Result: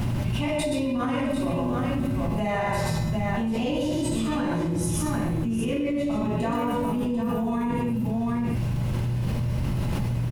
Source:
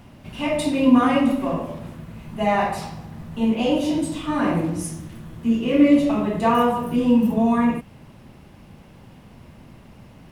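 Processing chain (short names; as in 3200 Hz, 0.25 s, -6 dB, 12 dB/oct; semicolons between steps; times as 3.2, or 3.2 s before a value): tone controls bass +8 dB, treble +3 dB; limiter -10 dBFS, peak gain reduction 9 dB; resonator 120 Hz, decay 1 s, harmonics odd, mix 80%; on a send: tapped delay 41/123/125/744 ms -11.5/-6.5/-4.5/-7.5 dB; on the sum: fast leveller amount 100%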